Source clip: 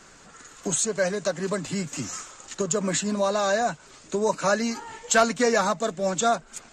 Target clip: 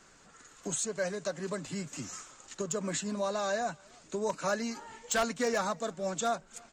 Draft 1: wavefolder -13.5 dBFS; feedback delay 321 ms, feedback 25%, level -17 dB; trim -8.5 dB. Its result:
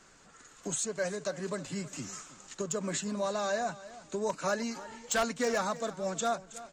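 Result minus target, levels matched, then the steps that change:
echo-to-direct +11.5 dB
change: feedback delay 321 ms, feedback 25%, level -28.5 dB

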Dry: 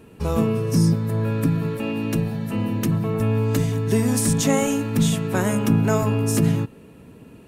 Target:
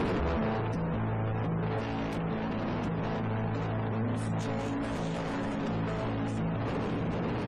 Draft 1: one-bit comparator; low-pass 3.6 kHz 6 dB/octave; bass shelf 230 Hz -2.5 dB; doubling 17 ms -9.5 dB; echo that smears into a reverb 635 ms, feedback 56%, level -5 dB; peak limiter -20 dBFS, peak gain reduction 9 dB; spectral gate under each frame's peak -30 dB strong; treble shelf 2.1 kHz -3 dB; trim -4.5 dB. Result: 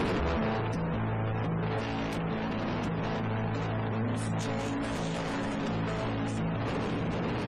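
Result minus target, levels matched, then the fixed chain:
4 kHz band +4.0 dB
one-bit comparator; low-pass 3.6 kHz 6 dB/octave; bass shelf 230 Hz -2.5 dB; doubling 17 ms -9.5 dB; echo that smears into a reverb 635 ms, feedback 56%, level -5 dB; peak limiter -20 dBFS, peak gain reduction 9 dB; spectral gate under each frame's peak -30 dB strong; treble shelf 2.1 kHz -9 dB; trim -4.5 dB

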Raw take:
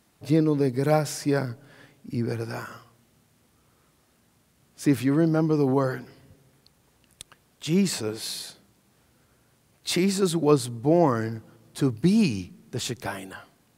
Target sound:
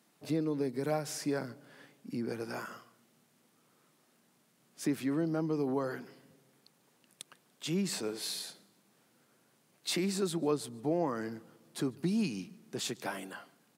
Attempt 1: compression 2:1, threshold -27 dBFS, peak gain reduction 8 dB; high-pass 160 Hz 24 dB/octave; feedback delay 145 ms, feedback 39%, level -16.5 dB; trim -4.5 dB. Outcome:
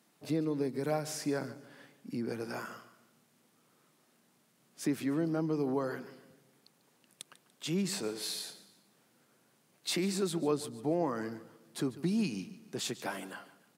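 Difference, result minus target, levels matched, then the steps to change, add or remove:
echo-to-direct +9 dB
change: feedback delay 145 ms, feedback 39%, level -25.5 dB

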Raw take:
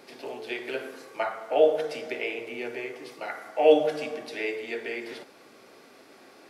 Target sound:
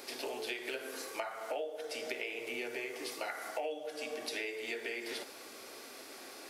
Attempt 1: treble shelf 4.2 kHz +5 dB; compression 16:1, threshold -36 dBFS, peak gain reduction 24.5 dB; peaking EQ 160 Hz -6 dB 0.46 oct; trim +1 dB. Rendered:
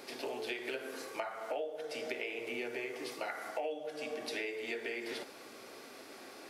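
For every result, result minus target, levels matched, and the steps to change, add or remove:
8 kHz band -5.5 dB; 125 Hz band +5.0 dB
change: treble shelf 4.2 kHz +12.5 dB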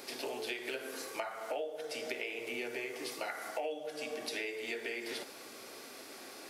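125 Hz band +4.0 dB
change: peaking EQ 160 Hz -17 dB 0.46 oct

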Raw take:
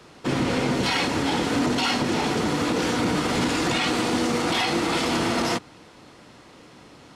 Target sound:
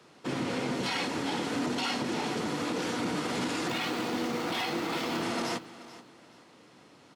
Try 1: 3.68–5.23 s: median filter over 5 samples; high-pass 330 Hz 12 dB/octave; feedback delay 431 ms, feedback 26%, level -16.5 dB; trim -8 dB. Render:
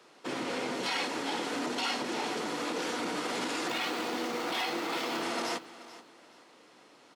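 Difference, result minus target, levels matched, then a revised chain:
125 Hz band -10.0 dB
3.68–5.23 s: median filter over 5 samples; high-pass 130 Hz 12 dB/octave; feedback delay 431 ms, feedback 26%, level -16.5 dB; trim -8 dB

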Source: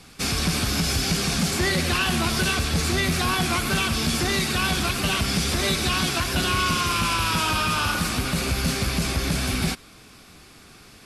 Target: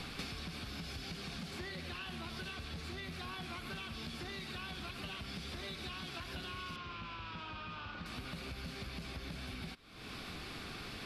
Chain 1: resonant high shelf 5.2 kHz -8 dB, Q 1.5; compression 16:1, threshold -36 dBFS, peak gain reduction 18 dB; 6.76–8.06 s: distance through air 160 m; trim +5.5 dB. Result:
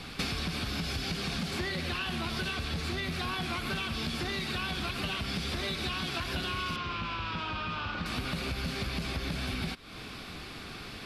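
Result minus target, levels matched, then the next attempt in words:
compression: peak gain reduction -10.5 dB
resonant high shelf 5.2 kHz -8 dB, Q 1.5; compression 16:1, threshold -47 dBFS, peak gain reduction 28.5 dB; 6.76–8.06 s: distance through air 160 m; trim +5.5 dB

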